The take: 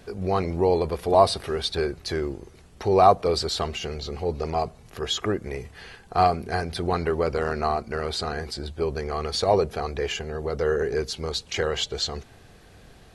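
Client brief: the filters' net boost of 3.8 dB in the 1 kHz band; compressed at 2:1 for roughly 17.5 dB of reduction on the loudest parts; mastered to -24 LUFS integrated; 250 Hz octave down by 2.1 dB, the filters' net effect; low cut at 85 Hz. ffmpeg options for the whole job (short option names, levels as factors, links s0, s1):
-af "highpass=85,equalizer=f=250:t=o:g=-4,equalizer=f=1000:t=o:g=6,acompressor=threshold=0.00891:ratio=2,volume=4.22"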